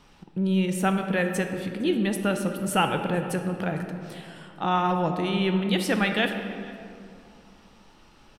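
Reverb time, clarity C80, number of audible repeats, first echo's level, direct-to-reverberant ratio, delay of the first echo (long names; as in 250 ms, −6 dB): 2.5 s, 7.5 dB, 1, −22.5 dB, 5.0 dB, 458 ms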